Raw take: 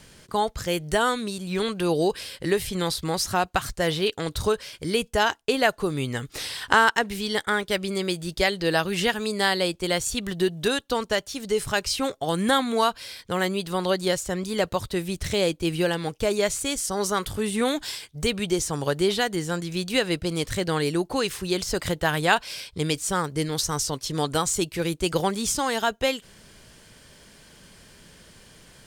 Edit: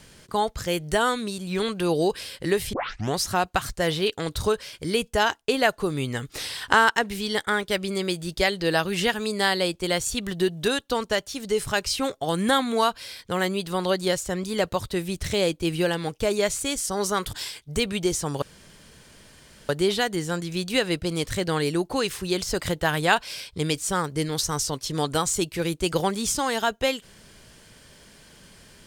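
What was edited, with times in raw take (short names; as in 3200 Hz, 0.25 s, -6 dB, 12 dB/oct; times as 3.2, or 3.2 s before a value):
2.73 tape start 0.44 s
17.33–17.8 cut
18.89 insert room tone 1.27 s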